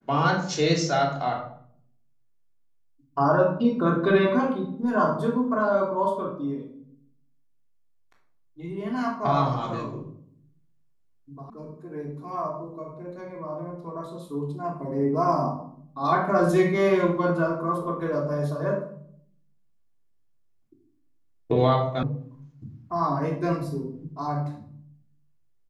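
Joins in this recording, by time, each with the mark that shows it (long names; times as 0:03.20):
0:11.50: cut off before it has died away
0:22.03: cut off before it has died away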